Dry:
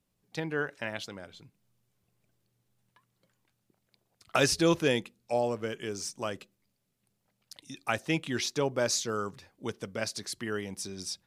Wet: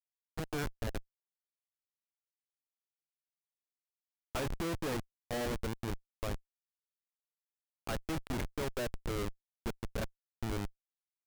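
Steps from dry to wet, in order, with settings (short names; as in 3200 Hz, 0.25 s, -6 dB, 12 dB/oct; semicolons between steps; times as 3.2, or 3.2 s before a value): Chebyshev low-pass 2400 Hz, order 2; Schmitt trigger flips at -31.5 dBFS; gain +1 dB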